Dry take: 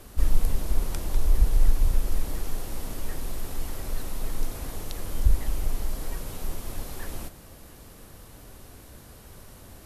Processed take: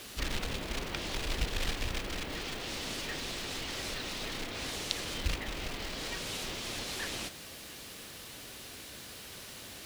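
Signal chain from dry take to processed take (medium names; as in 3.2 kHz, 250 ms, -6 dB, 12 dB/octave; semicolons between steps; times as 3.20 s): low-pass that closes with the level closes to 2.4 kHz, closed at -18 dBFS; short-mantissa float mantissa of 4-bit; frequency weighting D; added noise violet -60 dBFS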